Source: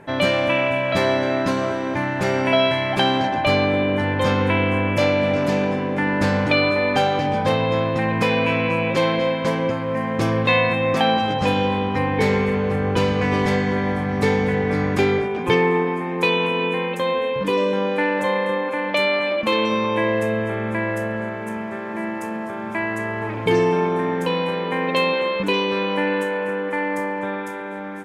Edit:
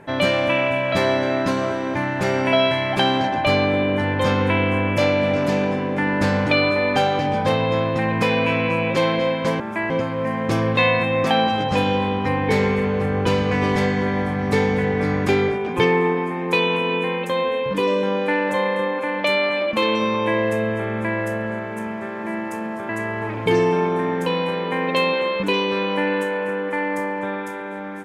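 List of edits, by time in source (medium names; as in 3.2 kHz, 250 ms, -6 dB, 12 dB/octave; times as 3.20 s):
22.59–22.89 s: move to 9.60 s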